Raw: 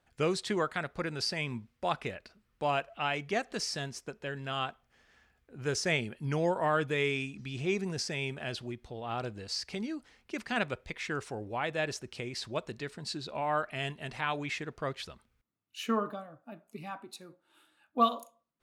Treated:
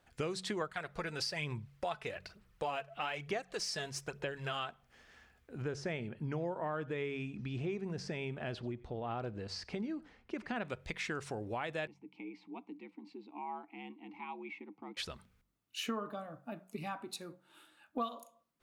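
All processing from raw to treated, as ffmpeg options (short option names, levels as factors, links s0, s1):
-filter_complex "[0:a]asettb=1/sr,asplit=3[s0][s1][s2];[s0]atrim=end=0.614[s3];[s1]atrim=start=0.61:end=4.69,asetpts=PTS-STARTPTS,afade=t=in:d=0.004:c=qsin,afade=t=out:st=4.076:d=0.004:c=qsin,equalizer=f=240:w=3.9:g=-12.5,aphaser=in_gain=1:out_gain=1:delay=4.7:decay=0.46:speed=1.1:type=sinusoidal[s4];[s2]atrim=start=4.686[s5];[s3][s4]acrossfade=d=0.004:c1=hsin:c2=qsin[s6];[s6][s5]acrossfade=d=0.004:c1=qsin:c2=hsin,asettb=1/sr,asplit=3[s7][s8][s9];[s7]atrim=end=5.624[s10];[s8]atrim=start=5.62:end=10.65,asetpts=PTS-STARTPTS,afade=t=in:d=0.004:c=qsin,afade=t=out:st=5.026:d=0.004:c=qsin,lowpass=f=1300:p=1,aecho=1:1:91:0.0668,atrim=end_sample=221823[s11];[s9]atrim=start=10.646[s12];[s10][s11]acrossfade=d=0.004:c1=hsin:c2=qsin[s13];[s13][s12]acrossfade=d=0.004:c1=qsin:c2=hsin,asettb=1/sr,asplit=3[s14][s15][s16];[s14]atrim=end=11.874[s17];[s15]atrim=start=11.87:end=14.97,asetpts=PTS-STARTPTS,afade=t=in:d=0.004:c=qsin,afade=t=out:st=3.096:d=0.004:c=qsin,highshelf=f=4100:g=-10,afreqshift=70,asplit=3[s18][s19][s20];[s18]bandpass=f=300:t=q:w=8,volume=1[s21];[s19]bandpass=f=870:t=q:w=8,volume=0.501[s22];[s20]bandpass=f=2240:t=q:w=8,volume=0.355[s23];[s21][s22][s23]amix=inputs=3:normalize=0[s24];[s16]atrim=start=14.966[s25];[s17][s24]acrossfade=d=0.004:c1=hsin:c2=qsin[s26];[s26][s25]acrossfade=d=0.004:c1=qsin:c2=hsin,bandreject=f=46.59:t=h:w=4,bandreject=f=93.18:t=h:w=4,bandreject=f=139.77:t=h:w=4,bandreject=f=186.36:t=h:w=4,acompressor=threshold=0.01:ratio=4,volume=1.5"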